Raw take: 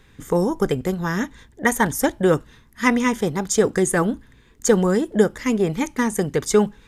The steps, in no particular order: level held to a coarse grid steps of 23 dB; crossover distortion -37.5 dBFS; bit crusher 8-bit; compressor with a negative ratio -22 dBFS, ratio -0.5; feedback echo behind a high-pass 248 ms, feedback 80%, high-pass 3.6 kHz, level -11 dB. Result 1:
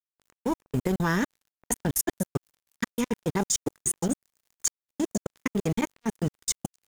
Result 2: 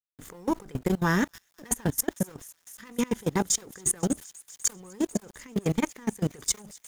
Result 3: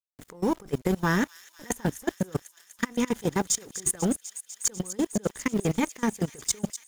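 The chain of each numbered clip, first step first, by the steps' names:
compressor with a negative ratio > bit crusher > feedback echo behind a high-pass > level held to a coarse grid > crossover distortion; compressor with a negative ratio > crossover distortion > feedback echo behind a high-pass > bit crusher > level held to a coarse grid; crossover distortion > bit crusher > compressor with a negative ratio > level held to a coarse grid > feedback echo behind a high-pass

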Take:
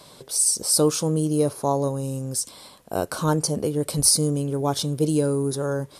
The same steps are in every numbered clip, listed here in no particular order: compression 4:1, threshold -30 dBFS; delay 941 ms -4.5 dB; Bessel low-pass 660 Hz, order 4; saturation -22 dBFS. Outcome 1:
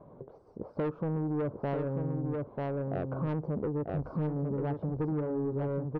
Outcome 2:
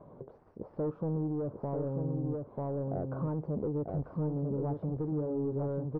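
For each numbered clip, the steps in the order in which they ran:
Bessel low-pass > saturation > delay > compression; saturation > delay > compression > Bessel low-pass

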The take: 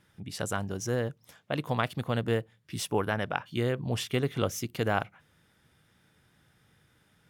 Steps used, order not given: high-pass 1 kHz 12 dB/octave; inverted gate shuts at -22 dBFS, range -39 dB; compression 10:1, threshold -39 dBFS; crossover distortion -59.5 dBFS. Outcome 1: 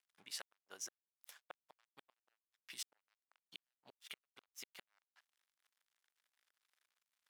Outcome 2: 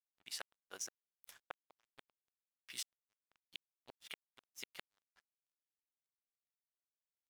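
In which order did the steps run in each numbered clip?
inverted gate > crossover distortion > compression > high-pass; inverted gate > high-pass > compression > crossover distortion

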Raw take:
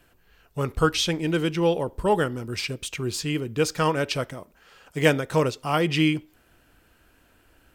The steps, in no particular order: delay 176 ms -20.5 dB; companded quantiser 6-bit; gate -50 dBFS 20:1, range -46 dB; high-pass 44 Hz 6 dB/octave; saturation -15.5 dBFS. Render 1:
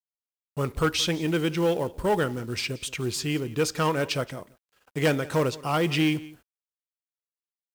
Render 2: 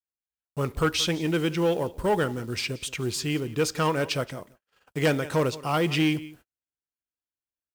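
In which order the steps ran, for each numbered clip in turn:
saturation > delay > gate > companded quantiser > high-pass; companded quantiser > delay > saturation > gate > high-pass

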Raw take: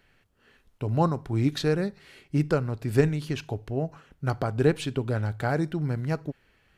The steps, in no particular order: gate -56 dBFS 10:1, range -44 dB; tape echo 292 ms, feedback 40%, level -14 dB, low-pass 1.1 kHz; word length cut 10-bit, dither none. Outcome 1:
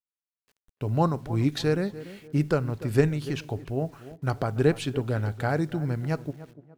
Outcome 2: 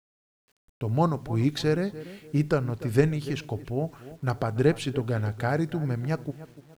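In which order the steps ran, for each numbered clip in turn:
gate > word length cut > tape echo; gate > tape echo > word length cut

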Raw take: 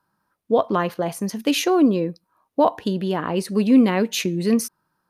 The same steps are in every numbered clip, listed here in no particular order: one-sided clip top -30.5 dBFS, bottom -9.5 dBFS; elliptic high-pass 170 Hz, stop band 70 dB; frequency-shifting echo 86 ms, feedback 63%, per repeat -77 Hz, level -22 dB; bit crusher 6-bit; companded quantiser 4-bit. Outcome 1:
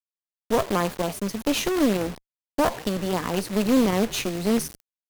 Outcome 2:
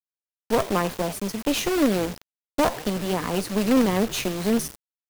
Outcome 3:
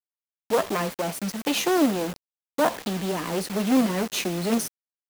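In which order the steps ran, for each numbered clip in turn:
elliptic high-pass > frequency-shifting echo > bit crusher > companded quantiser > one-sided clip; companded quantiser > elliptic high-pass > frequency-shifting echo > one-sided clip > bit crusher; one-sided clip > companded quantiser > frequency-shifting echo > elliptic high-pass > bit crusher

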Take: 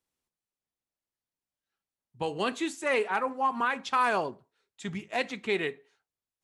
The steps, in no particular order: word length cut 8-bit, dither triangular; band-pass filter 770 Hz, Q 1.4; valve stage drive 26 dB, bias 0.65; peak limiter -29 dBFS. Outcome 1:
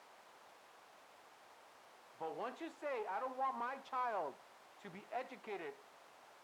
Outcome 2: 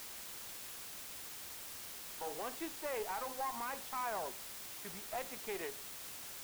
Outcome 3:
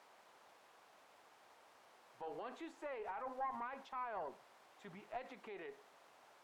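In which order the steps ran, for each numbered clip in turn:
valve stage > peak limiter > word length cut > band-pass filter; band-pass filter > peak limiter > valve stage > word length cut; word length cut > peak limiter > band-pass filter > valve stage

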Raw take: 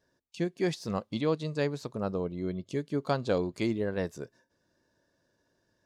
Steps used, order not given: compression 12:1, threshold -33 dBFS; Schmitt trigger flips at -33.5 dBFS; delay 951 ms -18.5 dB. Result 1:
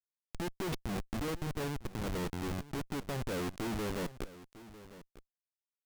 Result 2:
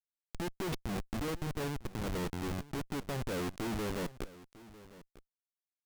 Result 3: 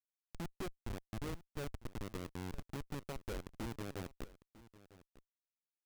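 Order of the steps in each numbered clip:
Schmitt trigger > delay > compression; Schmitt trigger > compression > delay; compression > Schmitt trigger > delay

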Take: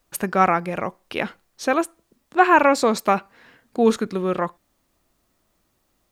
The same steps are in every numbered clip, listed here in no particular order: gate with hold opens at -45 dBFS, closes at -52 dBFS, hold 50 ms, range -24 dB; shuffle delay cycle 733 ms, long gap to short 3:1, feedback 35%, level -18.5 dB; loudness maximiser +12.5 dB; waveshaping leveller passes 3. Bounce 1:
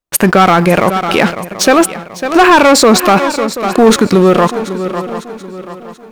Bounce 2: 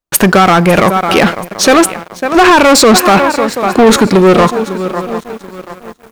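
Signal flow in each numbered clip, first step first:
waveshaping leveller > shuffle delay > loudness maximiser > gate with hold; shuffle delay > loudness maximiser > waveshaping leveller > gate with hold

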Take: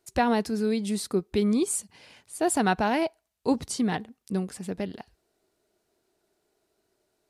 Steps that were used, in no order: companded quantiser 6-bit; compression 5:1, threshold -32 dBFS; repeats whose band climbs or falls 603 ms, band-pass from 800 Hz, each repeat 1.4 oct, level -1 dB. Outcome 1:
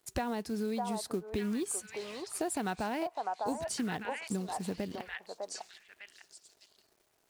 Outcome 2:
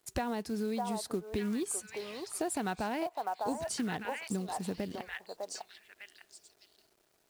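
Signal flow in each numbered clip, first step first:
companded quantiser > repeats whose band climbs or falls > compression; repeats whose band climbs or falls > companded quantiser > compression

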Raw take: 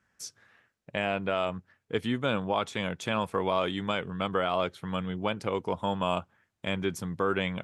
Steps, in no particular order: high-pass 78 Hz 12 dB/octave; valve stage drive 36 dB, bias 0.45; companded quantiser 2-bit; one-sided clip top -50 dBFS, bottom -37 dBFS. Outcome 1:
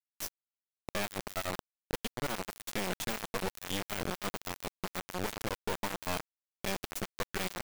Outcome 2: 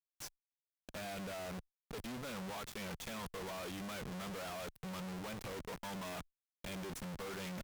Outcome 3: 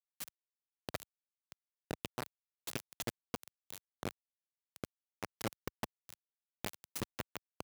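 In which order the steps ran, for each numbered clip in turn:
high-pass > valve stage > one-sided clip > companded quantiser; companded quantiser > high-pass > one-sided clip > valve stage; one-sided clip > valve stage > companded quantiser > high-pass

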